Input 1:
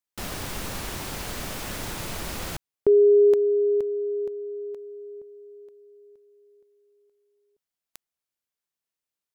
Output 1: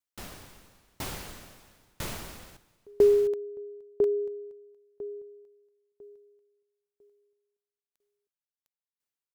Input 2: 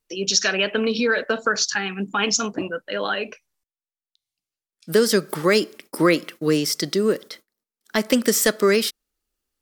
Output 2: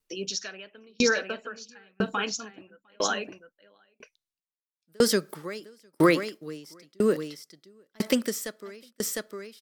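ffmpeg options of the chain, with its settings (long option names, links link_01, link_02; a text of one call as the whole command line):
ffmpeg -i in.wav -af "aecho=1:1:705:0.398,aeval=exprs='val(0)*pow(10,-37*if(lt(mod(1*n/s,1),2*abs(1)/1000),1-mod(1*n/s,1)/(2*abs(1)/1000),(mod(1*n/s,1)-2*abs(1)/1000)/(1-2*abs(1)/1000))/20)':channel_layout=same" out.wav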